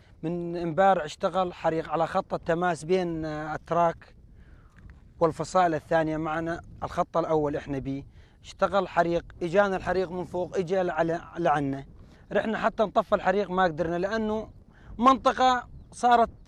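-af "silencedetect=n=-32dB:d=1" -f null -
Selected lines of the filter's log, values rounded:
silence_start: 3.92
silence_end: 5.21 | silence_duration: 1.29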